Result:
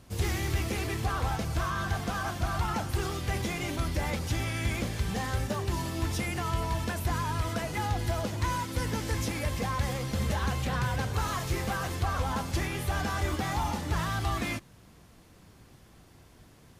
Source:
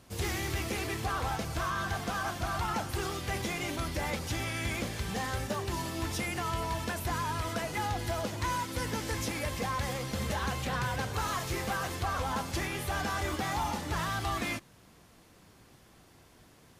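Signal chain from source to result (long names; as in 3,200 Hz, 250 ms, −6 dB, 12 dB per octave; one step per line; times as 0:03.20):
low-shelf EQ 180 Hz +7.5 dB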